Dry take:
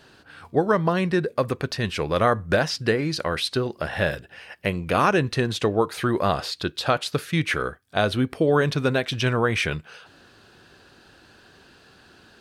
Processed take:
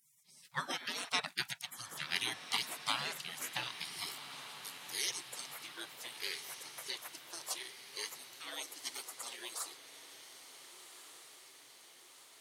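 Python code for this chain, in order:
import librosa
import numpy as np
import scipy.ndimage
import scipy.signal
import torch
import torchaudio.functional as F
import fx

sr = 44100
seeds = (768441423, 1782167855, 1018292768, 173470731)

y = fx.steep_highpass(x, sr, hz=fx.steps((0.0, 250.0), (4.04, 650.0)), slope=36)
y = fx.spec_gate(y, sr, threshold_db=-30, keep='weak')
y = fx.high_shelf(y, sr, hz=8000.0, db=-4.0)
y = fx.echo_diffused(y, sr, ms=1500, feedback_pct=61, wet_db=-11.0)
y = y * librosa.db_to_amplitude(9.0)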